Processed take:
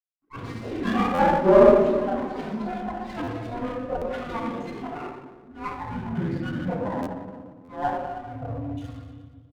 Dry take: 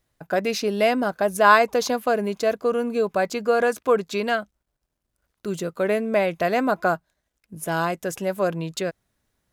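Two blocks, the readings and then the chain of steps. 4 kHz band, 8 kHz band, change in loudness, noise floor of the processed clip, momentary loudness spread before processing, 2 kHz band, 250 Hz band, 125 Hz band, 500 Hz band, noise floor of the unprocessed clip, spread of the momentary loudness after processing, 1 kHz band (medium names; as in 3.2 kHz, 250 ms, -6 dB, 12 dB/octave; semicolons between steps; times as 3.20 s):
-10.5 dB, under -15 dB, -2.0 dB, -50 dBFS, 10 LU, -10.0 dB, +1.0 dB, +3.0 dB, -1.5 dB, -79 dBFS, 20 LU, -4.0 dB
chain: expander on every frequency bin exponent 2; high-pass 160 Hz 12 dB/octave; gate with hold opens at -47 dBFS; gain riding within 4 dB 2 s; frequency shift -450 Hz; resampled via 8 kHz; auto-wah 440–1200 Hz, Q 4.2, down, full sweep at -18.5 dBFS; simulated room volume 980 m³, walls mixed, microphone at 7.8 m; ever faster or slower copies 108 ms, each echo +6 st, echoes 3, each echo -6 dB; two-band feedback delay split 500 Hz, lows 212 ms, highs 117 ms, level -13 dB; buffer glitch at 1.14/3.23/3.97/7.02/7.64 s, samples 512, times 3; sliding maximum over 9 samples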